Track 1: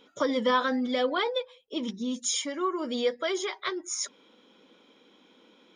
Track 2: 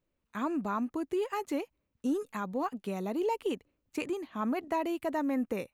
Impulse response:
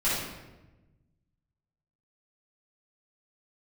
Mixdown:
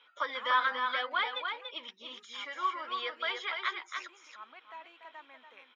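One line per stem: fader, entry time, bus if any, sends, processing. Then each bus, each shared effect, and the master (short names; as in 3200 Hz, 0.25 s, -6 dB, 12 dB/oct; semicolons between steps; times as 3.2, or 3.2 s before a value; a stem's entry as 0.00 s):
+2.0 dB, 0.00 s, no send, echo send -5.5 dB, high shelf 4900 Hz -5.5 dB; de-esser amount 90%
+2.5 dB, 0.00 s, no send, echo send -20 dB, auto duck -12 dB, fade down 0.70 s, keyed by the first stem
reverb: off
echo: echo 0.288 s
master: Butterworth band-pass 1900 Hz, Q 0.8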